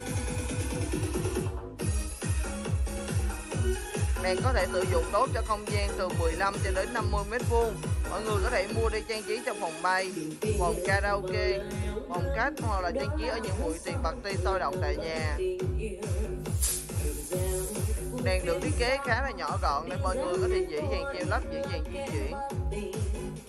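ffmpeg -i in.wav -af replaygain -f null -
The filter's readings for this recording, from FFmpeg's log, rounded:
track_gain = +11.4 dB
track_peak = 0.144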